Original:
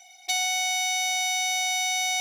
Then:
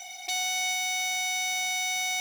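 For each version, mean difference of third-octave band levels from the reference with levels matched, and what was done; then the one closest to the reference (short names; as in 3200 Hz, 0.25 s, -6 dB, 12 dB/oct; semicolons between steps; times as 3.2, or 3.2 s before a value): 7.5 dB: in parallel at -3 dB: negative-ratio compressor -32 dBFS, ratio -0.5; on the sum: limiter -20 dBFS, peak gain reduction 7 dB; modulation noise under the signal 19 dB; echo with dull and thin repeats by turns 0.145 s, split 2200 Hz, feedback 57%, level -13 dB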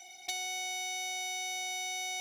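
3.0 dB: octaver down 1 oct, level +2 dB; compressor 8:1, threshold -33 dBFS, peak gain reduction 11 dB; soft clip -24.5 dBFS, distortion -25 dB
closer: second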